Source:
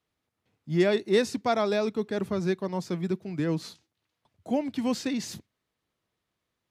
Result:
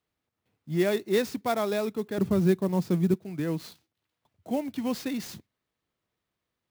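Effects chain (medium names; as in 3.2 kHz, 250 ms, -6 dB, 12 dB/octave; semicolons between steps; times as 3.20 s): 2.18–3.14 s: bass shelf 400 Hz +10.5 dB; sampling jitter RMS 0.023 ms; trim -2 dB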